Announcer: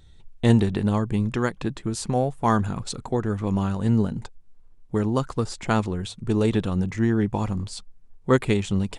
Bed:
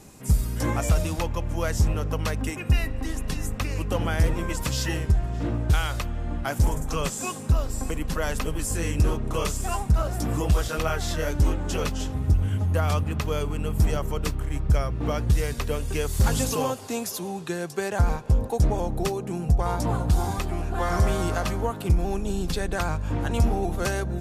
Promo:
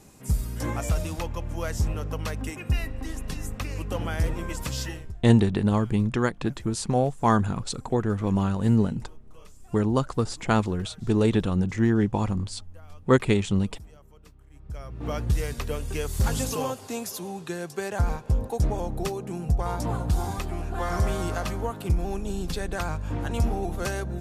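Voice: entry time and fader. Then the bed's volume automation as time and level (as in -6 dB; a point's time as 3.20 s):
4.80 s, 0.0 dB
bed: 4.82 s -4 dB
5.27 s -25.5 dB
14.46 s -25.5 dB
15.13 s -3 dB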